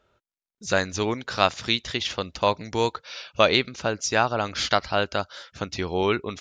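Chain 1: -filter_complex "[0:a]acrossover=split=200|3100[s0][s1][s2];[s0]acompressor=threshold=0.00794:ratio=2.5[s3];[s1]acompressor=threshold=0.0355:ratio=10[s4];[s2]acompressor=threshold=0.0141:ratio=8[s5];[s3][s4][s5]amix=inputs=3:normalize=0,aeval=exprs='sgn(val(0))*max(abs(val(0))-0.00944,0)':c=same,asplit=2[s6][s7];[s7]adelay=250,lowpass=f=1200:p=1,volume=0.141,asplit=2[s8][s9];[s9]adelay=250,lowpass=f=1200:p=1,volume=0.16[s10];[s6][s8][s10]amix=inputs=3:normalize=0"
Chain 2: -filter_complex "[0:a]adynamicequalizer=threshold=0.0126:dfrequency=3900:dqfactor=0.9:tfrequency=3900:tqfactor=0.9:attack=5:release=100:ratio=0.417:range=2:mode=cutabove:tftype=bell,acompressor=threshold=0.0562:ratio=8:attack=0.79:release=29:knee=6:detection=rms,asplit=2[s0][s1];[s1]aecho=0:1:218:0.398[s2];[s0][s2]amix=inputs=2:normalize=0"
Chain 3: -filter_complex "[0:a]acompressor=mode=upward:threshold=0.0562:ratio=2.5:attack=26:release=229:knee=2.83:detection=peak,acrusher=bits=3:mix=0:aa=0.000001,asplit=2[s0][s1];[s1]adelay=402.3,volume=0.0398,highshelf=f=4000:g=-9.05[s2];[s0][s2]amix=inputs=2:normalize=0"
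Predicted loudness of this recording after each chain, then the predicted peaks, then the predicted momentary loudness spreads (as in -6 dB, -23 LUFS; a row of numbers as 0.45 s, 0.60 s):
-35.5 LUFS, -33.0 LUFS, -24.0 LUFS; -9.5 dBFS, -17.5 dBFS, -3.0 dBFS; 5 LU, 5 LU, 9 LU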